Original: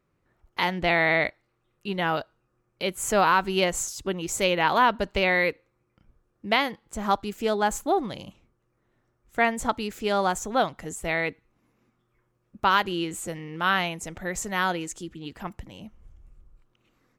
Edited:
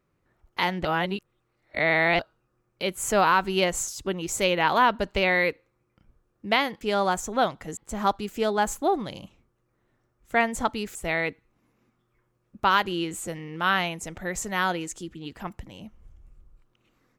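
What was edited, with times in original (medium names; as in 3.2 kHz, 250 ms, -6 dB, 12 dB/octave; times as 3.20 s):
0.85–2.19 s: reverse
9.99–10.95 s: move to 6.81 s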